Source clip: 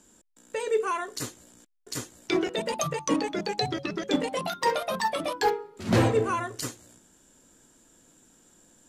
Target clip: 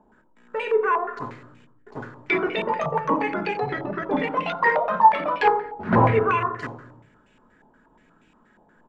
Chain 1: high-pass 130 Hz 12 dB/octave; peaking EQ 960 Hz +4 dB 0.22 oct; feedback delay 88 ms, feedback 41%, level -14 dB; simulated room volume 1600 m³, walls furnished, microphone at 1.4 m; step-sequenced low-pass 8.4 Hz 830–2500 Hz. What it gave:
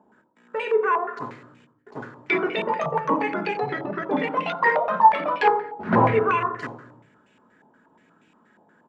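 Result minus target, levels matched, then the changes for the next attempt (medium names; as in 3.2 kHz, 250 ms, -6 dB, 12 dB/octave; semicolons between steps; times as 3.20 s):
125 Hz band -3.5 dB
remove: high-pass 130 Hz 12 dB/octave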